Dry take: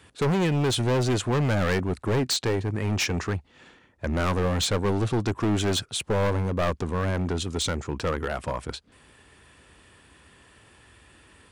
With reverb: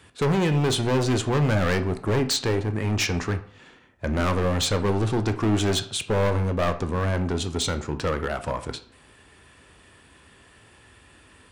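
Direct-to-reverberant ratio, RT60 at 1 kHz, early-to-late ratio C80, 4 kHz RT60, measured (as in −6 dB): 8.0 dB, 0.50 s, 17.5 dB, 0.40 s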